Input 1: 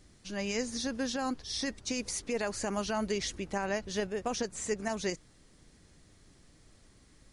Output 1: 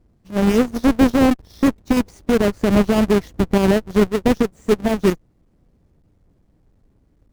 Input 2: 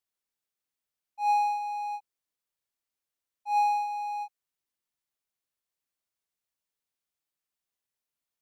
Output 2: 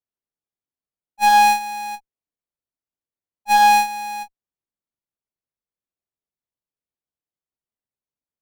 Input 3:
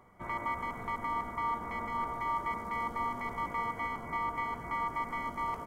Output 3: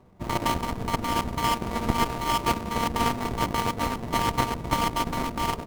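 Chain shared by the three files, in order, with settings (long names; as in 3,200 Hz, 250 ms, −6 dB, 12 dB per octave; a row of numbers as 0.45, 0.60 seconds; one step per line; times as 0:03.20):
each half-wave held at its own peak
tilt shelving filter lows +8 dB, about 1,100 Hz
harmonic generator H 2 −11 dB, 5 −26 dB, 7 −17 dB, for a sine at −11.5 dBFS
boost into a limiter +14 dB
expander for the loud parts 1.5 to 1, over −21 dBFS
level −4.5 dB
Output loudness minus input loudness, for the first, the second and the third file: +16.0, +13.5, +8.5 LU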